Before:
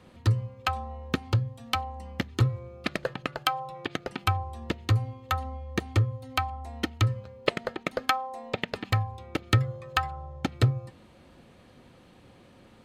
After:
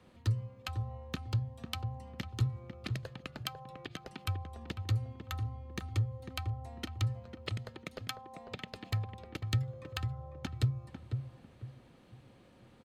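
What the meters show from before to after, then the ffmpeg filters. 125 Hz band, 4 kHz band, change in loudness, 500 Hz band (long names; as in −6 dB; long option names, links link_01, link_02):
−6.5 dB, −9.0 dB, −8.5 dB, −13.5 dB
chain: -filter_complex "[0:a]acrossover=split=210|3000[link_01][link_02][link_03];[link_02]acompressor=threshold=-37dB:ratio=6[link_04];[link_01][link_04][link_03]amix=inputs=3:normalize=0,asplit=2[link_05][link_06];[link_06]adelay=498,lowpass=frequency=1100:poles=1,volume=-6dB,asplit=2[link_07][link_08];[link_08]adelay=498,lowpass=frequency=1100:poles=1,volume=0.32,asplit=2[link_09][link_10];[link_10]adelay=498,lowpass=frequency=1100:poles=1,volume=0.32,asplit=2[link_11][link_12];[link_12]adelay=498,lowpass=frequency=1100:poles=1,volume=0.32[link_13];[link_05][link_07][link_09][link_11][link_13]amix=inputs=5:normalize=0,volume=-7dB"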